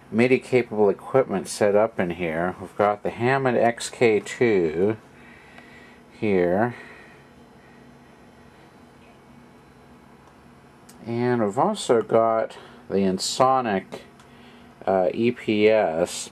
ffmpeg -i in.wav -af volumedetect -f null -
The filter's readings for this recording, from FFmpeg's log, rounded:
mean_volume: -23.9 dB
max_volume: -4.0 dB